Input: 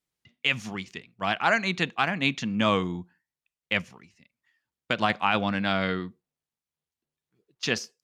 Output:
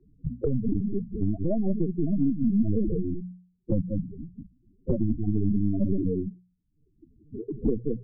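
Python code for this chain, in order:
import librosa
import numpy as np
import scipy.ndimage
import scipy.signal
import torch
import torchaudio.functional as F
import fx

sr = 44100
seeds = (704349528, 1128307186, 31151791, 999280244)

p1 = scipy.signal.sosfilt(scipy.signal.cheby2(4, 50, 1200.0, 'lowpass', fs=sr, output='sos'), x)
p2 = fx.low_shelf(p1, sr, hz=130.0, db=-2.0)
p3 = p2 + fx.echo_single(p2, sr, ms=185, db=-4.5, dry=0)
p4 = fx.lpc_vocoder(p3, sr, seeds[0], excitation='pitch_kept', order=8)
p5 = fx.hum_notches(p4, sr, base_hz=60, count=3)
p6 = fx.spec_topn(p5, sr, count=8)
p7 = fx.band_squash(p6, sr, depth_pct=100)
y = p7 * 10.0 ** (8.0 / 20.0)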